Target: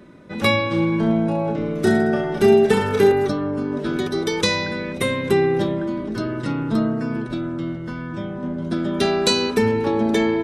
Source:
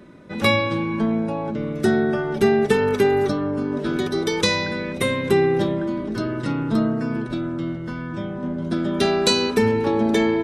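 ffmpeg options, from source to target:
ffmpeg -i in.wav -filter_complex "[0:a]asettb=1/sr,asplit=3[link_01][link_02][link_03];[link_01]atrim=end=0.704[link_04];[link_02]atrim=start=0.7:end=3.12,asetpts=PTS-STARTPTS,afade=type=in:duration=0.004:curve=qsin,afade=type=out:start_time=2.416:duration=0.004:curve=qsin,aecho=1:1:30|66|109.2|161|223.2:0.631|0.398|0.251|0.158|0.1,atrim=end_sample=106722[link_05];[link_03]atrim=start=3.116[link_06];[link_04][link_05]acrossfade=duration=0.004:curve1=hsin:curve2=qsin[link_07];[link_07][link_06]acrossfade=duration=0.004:curve1=qsin:curve2=hsin" out.wav

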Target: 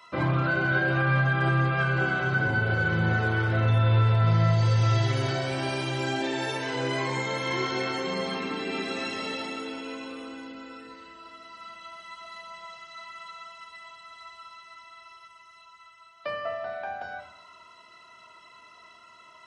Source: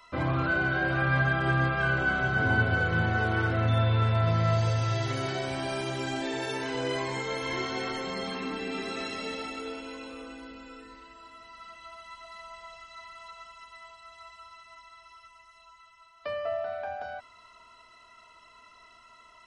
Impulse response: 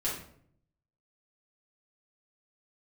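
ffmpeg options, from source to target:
-filter_complex "[0:a]highpass=100,alimiter=limit=-20dB:level=0:latency=1:release=146,asplit=2[link_01][link_02];[1:a]atrim=start_sample=2205,lowpass=8600[link_03];[link_02][link_03]afir=irnorm=-1:irlink=0,volume=-7.5dB[link_04];[link_01][link_04]amix=inputs=2:normalize=0"

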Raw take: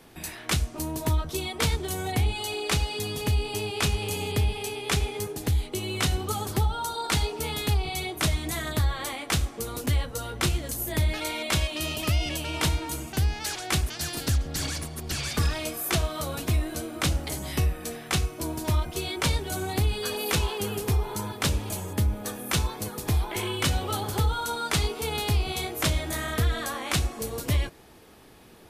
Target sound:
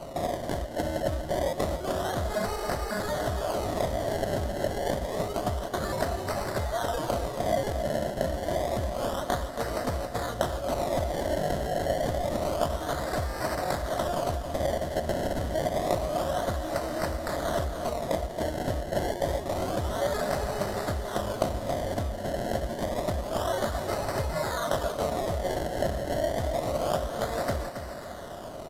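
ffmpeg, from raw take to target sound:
ffmpeg -i in.wav -filter_complex "[0:a]aexciter=amount=4:drive=7.1:freq=2800,acrossover=split=4200[link_01][link_02];[link_02]acompressor=threshold=-24dB:ratio=4:attack=1:release=60[link_03];[link_01][link_03]amix=inputs=2:normalize=0,highshelf=frequency=9200:gain=-4,acompressor=threshold=-32dB:ratio=6,acrusher=samples=25:mix=1:aa=0.000001:lfo=1:lforange=25:lforate=0.28,aeval=exprs='val(0)+0.00126*sin(2*PI*2900*n/s)':channel_layout=same,superequalizer=8b=3.16:12b=0.398,asplit=2[link_04][link_05];[link_05]aecho=0:1:274|548|822|1096:0.355|0.135|0.0512|0.0195[link_06];[link_04][link_06]amix=inputs=2:normalize=0,aresample=32000,aresample=44100,volume=2.5dB" out.wav

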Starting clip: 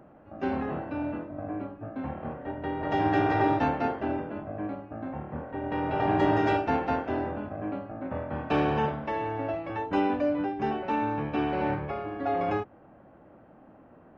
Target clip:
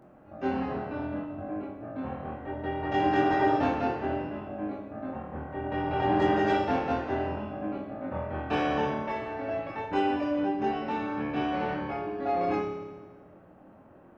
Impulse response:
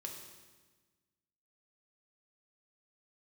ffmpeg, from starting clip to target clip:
-filter_complex "[0:a]asplit=2[link_01][link_02];[1:a]atrim=start_sample=2205,highshelf=frequency=3800:gain=8.5,adelay=23[link_03];[link_02][link_03]afir=irnorm=-1:irlink=0,volume=3dB[link_04];[link_01][link_04]amix=inputs=2:normalize=0,volume=-4dB"

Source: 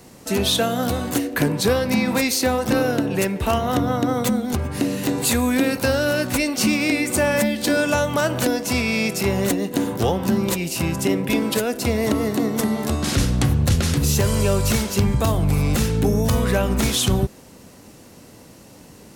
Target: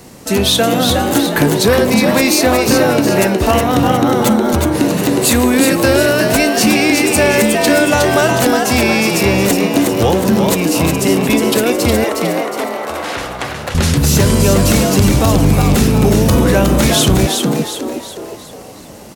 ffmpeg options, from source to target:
ffmpeg -i in.wav -filter_complex "[0:a]asettb=1/sr,asplit=3[link_01][link_02][link_03];[link_01]atrim=end=12.044[link_04];[link_02]atrim=start=12.04:end=13.75,asetpts=PTS-STARTPTS,afade=type=in:duration=0.004:curve=qsin,afade=type=out:start_time=1.706:duration=0.004:curve=qsin,acrossover=split=460 2900:gain=0.0794 1 0.2[link_05][link_06][link_07];[link_05][link_06][link_07]amix=inputs=3:normalize=0[link_08];[link_03]atrim=start=13.746[link_09];[link_04][link_08]acrossfade=duration=0.004:curve1=hsin:curve2=qsin[link_10];[link_10][link_09]acrossfade=duration=0.004:curve1=qsin:curve2=hsin,asplit=7[link_11][link_12][link_13][link_14][link_15][link_16][link_17];[link_12]adelay=363,afreqshift=92,volume=-4.5dB[link_18];[link_13]adelay=726,afreqshift=184,volume=-11.4dB[link_19];[link_14]adelay=1089,afreqshift=276,volume=-18.4dB[link_20];[link_15]adelay=1452,afreqshift=368,volume=-25.3dB[link_21];[link_16]adelay=1815,afreqshift=460,volume=-32.2dB[link_22];[link_17]adelay=2178,afreqshift=552,volume=-39.2dB[link_23];[link_11][link_18][link_19][link_20][link_21][link_22][link_23]amix=inputs=7:normalize=0,asoftclip=type=tanh:threshold=-7.5dB,volume=7.5dB" out.wav

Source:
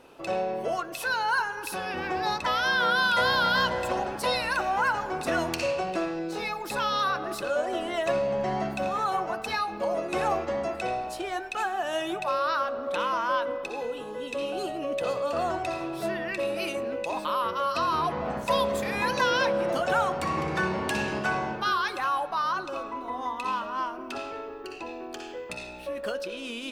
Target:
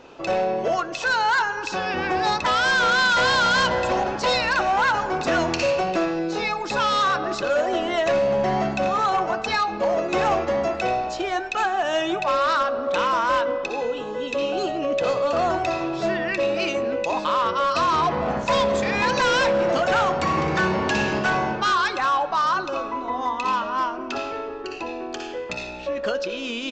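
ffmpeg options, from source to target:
ffmpeg -i in.wav -af "acontrast=76,aresample=16000,asoftclip=type=hard:threshold=-16dB,aresample=44100" out.wav

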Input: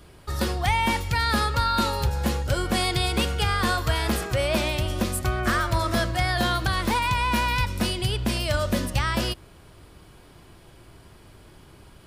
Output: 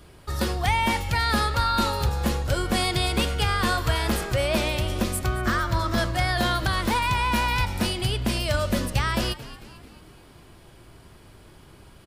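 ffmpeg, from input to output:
ffmpeg -i in.wav -filter_complex "[0:a]asettb=1/sr,asplit=3[link_01][link_02][link_03];[link_01]atrim=end=5.264[link_04];[link_02]atrim=start=5.26:end=5.98,asetpts=PTS-STARTPTS,afade=type=in:duration=0.004:curve=qsin,afade=type=out:start_time=0.716:duration=0.004:curve=qsin,equalizer=frequency=630:width_type=o:width=0.67:gain=-4,equalizer=frequency=2500:width_type=o:width=0.67:gain=-4,equalizer=frequency=10000:width_type=o:width=0.67:gain=-10[link_05];[link_03]atrim=start=5.976[link_06];[link_04][link_05]acrossfade=duration=0.004:curve1=hsin:curve2=qsin[link_07];[link_07][link_06]acrossfade=duration=0.004:curve1=qsin:curve2=hsin,asplit=6[link_08][link_09][link_10][link_11][link_12][link_13];[link_09]adelay=222,afreqshift=-94,volume=-16dB[link_14];[link_10]adelay=444,afreqshift=-188,volume=-21.7dB[link_15];[link_11]adelay=666,afreqshift=-282,volume=-27.4dB[link_16];[link_12]adelay=888,afreqshift=-376,volume=-33dB[link_17];[link_13]adelay=1110,afreqshift=-470,volume=-38.7dB[link_18];[link_08][link_14][link_15][link_16][link_17][link_18]amix=inputs=6:normalize=0" out.wav

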